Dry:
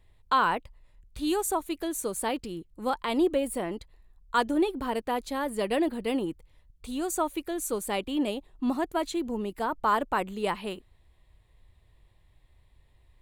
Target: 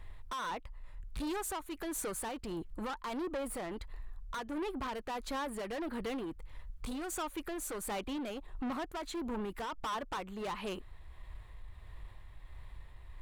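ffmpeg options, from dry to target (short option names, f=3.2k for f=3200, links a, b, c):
-af "equalizer=f=1.3k:w=0.91:g=11,acompressor=threshold=-38dB:ratio=2.5,lowshelf=f=72:g=10.5,asoftclip=type=tanh:threshold=-39dB,tremolo=f=1.5:d=0.29,volume=5.5dB"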